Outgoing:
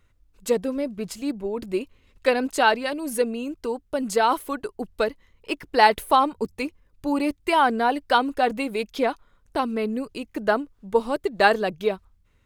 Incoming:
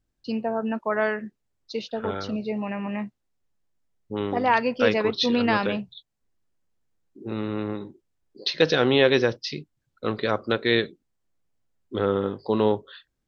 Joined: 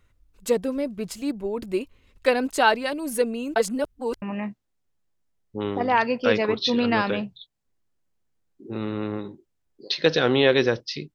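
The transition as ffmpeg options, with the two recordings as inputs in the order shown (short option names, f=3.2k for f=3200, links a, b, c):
-filter_complex "[0:a]apad=whole_dur=11.14,atrim=end=11.14,asplit=2[a][b];[a]atrim=end=3.562[c];[b]atrim=start=3.558:end=4.222,asetpts=PTS-STARTPTS,areverse[d];[1:a]atrim=start=2.778:end=9.7[e];[c][d]acrossfade=d=0.004:c1=hsin:c2=hsin[f];[f][e]acrossfade=d=0.004:c1=hsin:c2=hsin"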